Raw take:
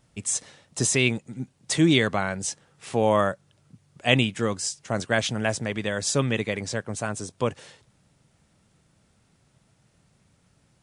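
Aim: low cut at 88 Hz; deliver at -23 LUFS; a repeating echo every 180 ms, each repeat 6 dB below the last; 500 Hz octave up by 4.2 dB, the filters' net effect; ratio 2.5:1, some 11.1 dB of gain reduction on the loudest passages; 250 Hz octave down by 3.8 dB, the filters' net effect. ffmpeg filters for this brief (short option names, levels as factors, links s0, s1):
-af "highpass=88,equalizer=f=250:t=o:g=-8,equalizer=f=500:t=o:g=7,acompressor=threshold=0.0316:ratio=2.5,aecho=1:1:180|360|540|720|900|1080:0.501|0.251|0.125|0.0626|0.0313|0.0157,volume=2.51"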